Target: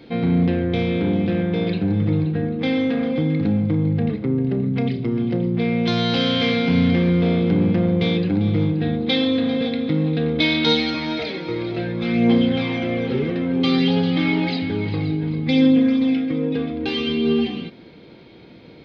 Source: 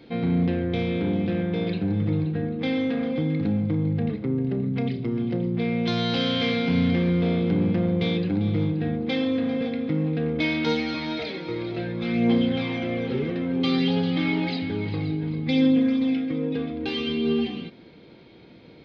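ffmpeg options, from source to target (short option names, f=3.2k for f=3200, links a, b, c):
-filter_complex "[0:a]asettb=1/sr,asplit=3[a][b][c];[a]atrim=end=8.824[d];[b]atrim=start=8.82:end=10.9,asetpts=PTS-STARTPTS,afade=t=in:d=0.004:c=qsin,afade=t=out:st=2.076:d=0.004:c=qsin,equalizer=f=3.8k:t=o:w=0.42:g=11[e];[c]atrim=start=10.896[f];[d][e]acrossfade=d=0.004:c1=hsin:c2=qsin[g];[g][f]acrossfade=d=0.004:c1=qsin:c2=hsin,volume=4.5dB"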